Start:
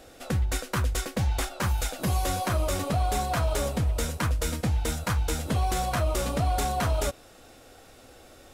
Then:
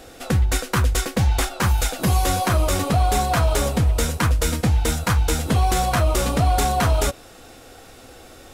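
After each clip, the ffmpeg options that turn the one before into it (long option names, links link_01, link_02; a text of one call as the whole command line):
ffmpeg -i in.wav -af "bandreject=frequency=590:width=12,volume=7.5dB" out.wav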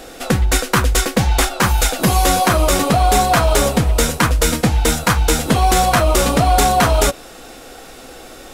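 ffmpeg -i in.wav -af "equalizer=frequency=88:width=1.7:gain=-12,volume=7.5dB" out.wav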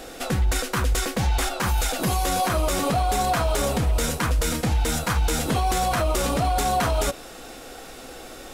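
ffmpeg -i in.wav -af "alimiter=limit=-11.5dB:level=0:latency=1:release=40,volume=-3dB" out.wav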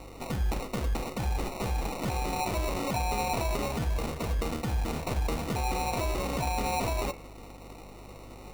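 ffmpeg -i in.wav -af "acrusher=samples=27:mix=1:aa=0.000001,bandreject=frequency=84.86:width_type=h:width=4,bandreject=frequency=169.72:width_type=h:width=4,bandreject=frequency=254.58:width_type=h:width=4,bandreject=frequency=339.44:width_type=h:width=4,bandreject=frequency=424.3:width_type=h:width=4,bandreject=frequency=509.16:width_type=h:width=4,bandreject=frequency=594.02:width_type=h:width=4,bandreject=frequency=678.88:width_type=h:width=4,bandreject=frequency=763.74:width_type=h:width=4,bandreject=frequency=848.6:width_type=h:width=4,bandreject=frequency=933.46:width_type=h:width=4,bandreject=frequency=1018.32:width_type=h:width=4,bandreject=frequency=1103.18:width_type=h:width=4,bandreject=frequency=1188.04:width_type=h:width=4,bandreject=frequency=1272.9:width_type=h:width=4,bandreject=frequency=1357.76:width_type=h:width=4,bandreject=frequency=1442.62:width_type=h:width=4,bandreject=frequency=1527.48:width_type=h:width=4,bandreject=frequency=1612.34:width_type=h:width=4,bandreject=frequency=1697.2:width_type=h:width=4,bandreject=frequency=1782.06:width_type=h:width=4,bandreject=frequency=1866.92:width_type=h:width=4,bandreject=frequency=1951.78:width_type=h:width=4,bandreject=frequency=2036.64:width_type=h:width=4,bandreject=frequency=2121.5:width_type=h:width=4,bandreject=frequency=2206.36:width_type=h:width=4,bandreject=frequency=2291.22:width_type=h:width=4,bandreject=frequency=2376.08:width_type=h:width=4,bandreject=frequency=2460.94:width_type=h:width=4,bandreject=frequency=2545.8:width_type=h:width=4,bandreject=frequency=2630.66:width_type=h:width=4,bandreject=frequency=2715.52:width_type=h:width=4,aeval=exprs='val(0)+0.00891*(sin(2*PI*50*n/s)+sin(2*PI*2*50*n/s)/2+sin(2*PI*3*50*n/s)/3+sin(2*PI*4*50*n/s)/4+sin(2*PI*5*50*n/s)/5)':channel_layout=same,volume=-7.5dB" out.wav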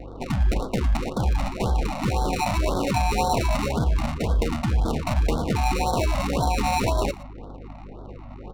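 ffmpeg -i in.wav -af "adynamicsmooth=sensitivity=8:basefreq=760,aecho=1:1:118:0.112,afftfilt=real='re*(1-between(b*sr/1024,370*pow(2300/370,0.5+0.5*sin(2*PI*1.9*pts/sr))/1.41,370*pow(2300/370,0.5+0.5*sin(2*PI*1.9*pts/sr))*1.41))':imag='im*(1-between(b*sr/1024,370*pow(2300/370,0.5+0.5*sin(2*PI*1.9*pts/sr))/1.41,370*pow(2300/370,0.5+0.5*sin(2*PI*1.9*pts/sr))*1.41))':win_size=1024:overlap=0.75,volume=8dB" out.wav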